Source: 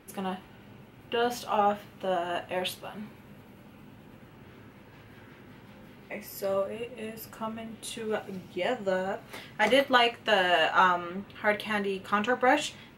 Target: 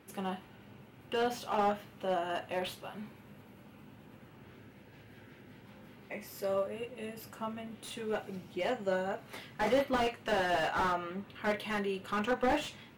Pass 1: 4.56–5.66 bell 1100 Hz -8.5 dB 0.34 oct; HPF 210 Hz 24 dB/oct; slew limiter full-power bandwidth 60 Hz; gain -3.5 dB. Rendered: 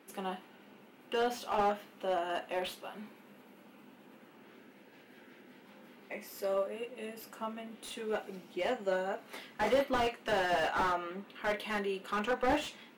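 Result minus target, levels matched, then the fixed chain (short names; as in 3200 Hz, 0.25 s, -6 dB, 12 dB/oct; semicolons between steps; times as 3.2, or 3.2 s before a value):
125 Hz band -4.5 dB
4.56–5.66 bell 1100 Hz -8.5 dB 0.34 oct; HPF 56 Hz 24 dB/oct; slew limiter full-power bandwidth 60 Hz; gain -3.5 dB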